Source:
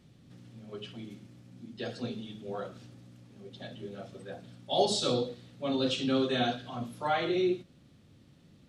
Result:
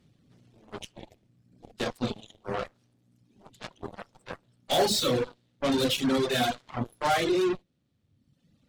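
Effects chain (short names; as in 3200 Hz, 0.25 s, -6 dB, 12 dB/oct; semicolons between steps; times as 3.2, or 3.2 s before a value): soft clip -26.5 dBFS, distortion -12 dB; added harmonics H 3 -21 dB, 4 -18 dB, 7 -17 dB, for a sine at -26.5 dBFS; reverb removal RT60 1.2 s; gain +8.5 dB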